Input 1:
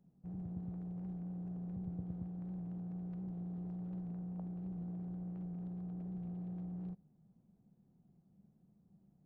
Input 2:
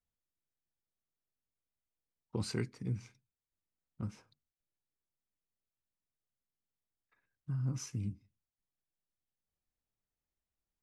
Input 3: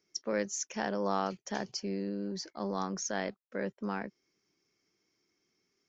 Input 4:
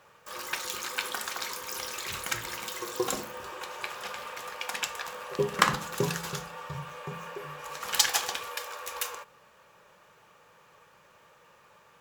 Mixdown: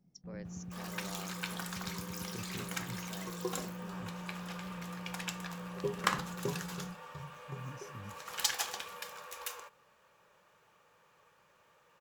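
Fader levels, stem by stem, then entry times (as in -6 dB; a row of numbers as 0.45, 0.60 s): -2.0, -10.5, -17.0, -8.0 dB; 0.00, 0.00, 0.00, 0.45 s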